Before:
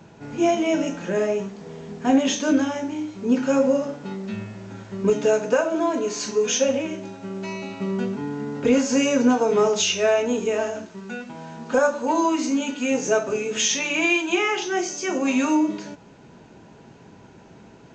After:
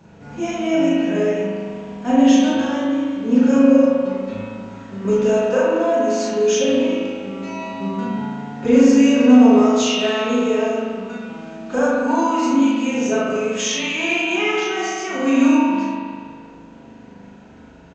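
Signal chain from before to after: bell 60 Hz +4.5 dB 2.3 oct; doubler 36 ms -3 dB; spring tank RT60 1.9 s, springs 40 ms, chirp 60 ms, DRR -4.5 dB; gain -4 dB

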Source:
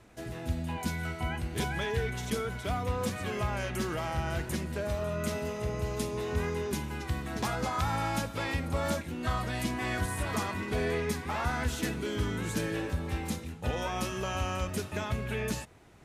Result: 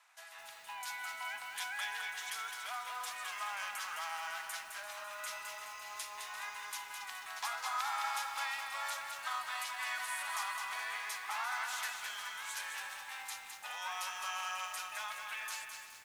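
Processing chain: steep high-pass 850 Hz 36 dB/oct; on a send: feedback echo 0.343 s, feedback 39%, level -14.5 dB; on the sum: lo-fi delay 0.211 s, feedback 55%, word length 9-bit, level -5 dB; gain -3 dB

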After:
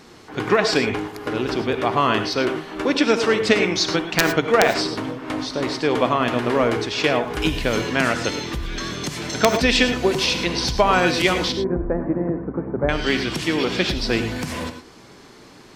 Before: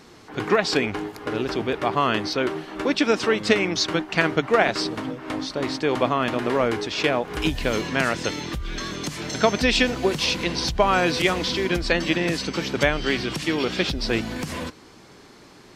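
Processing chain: wrapped overs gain 4 dB; 11.52–12.89 Gaussian blur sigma 8.2 samples; non-linear reverb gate 0.13 s rising, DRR 8 dB; gain +2 dB

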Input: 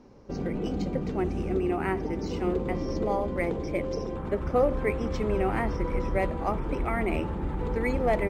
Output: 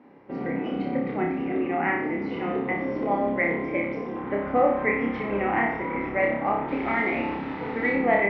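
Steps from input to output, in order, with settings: 6.68–7.91 delta modulation 32 kbps, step -38 dBFS; speaker cabinet 210–3000 Hz, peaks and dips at 270 Hz +6 dB, 390 Hz -4 dB, 810 Hz +4 dB, 2000 Hz +10 dB; flutter echo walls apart 5.1 m, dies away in 0.64 s

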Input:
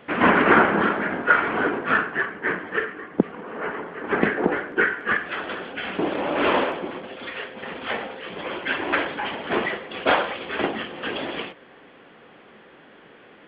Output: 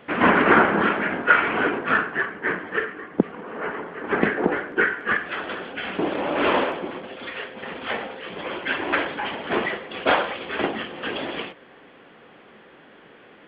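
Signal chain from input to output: 0.84–1.89 dynamic EQ 2600 Hz, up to +7 dB, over -38 dBFS, Q 2

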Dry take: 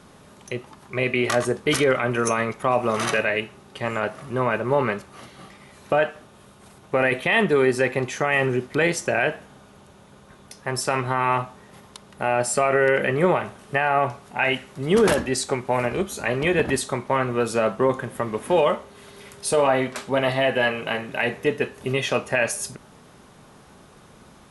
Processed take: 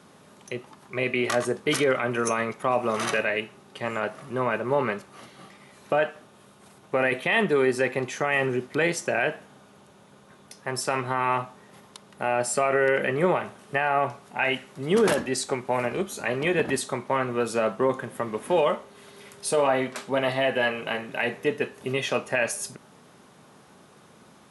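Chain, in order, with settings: HPF 130 Hz 12 dB/oct; gain -3 dB

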